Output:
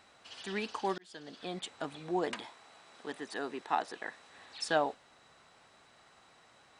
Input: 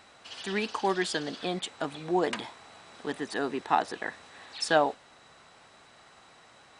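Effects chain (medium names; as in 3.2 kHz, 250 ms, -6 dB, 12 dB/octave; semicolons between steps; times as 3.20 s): 0.98–1.65 s: fade in; 2.34–4.30 s: bass shelf 150 Hz -12 dB; trim -6 dB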